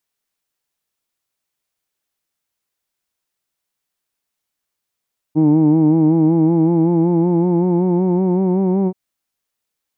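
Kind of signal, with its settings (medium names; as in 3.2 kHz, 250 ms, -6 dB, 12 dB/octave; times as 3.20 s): formant-synthesis vowel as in who'd, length 3.58 s, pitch 152 Hz, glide +4 st, vibrato depth 0.65 st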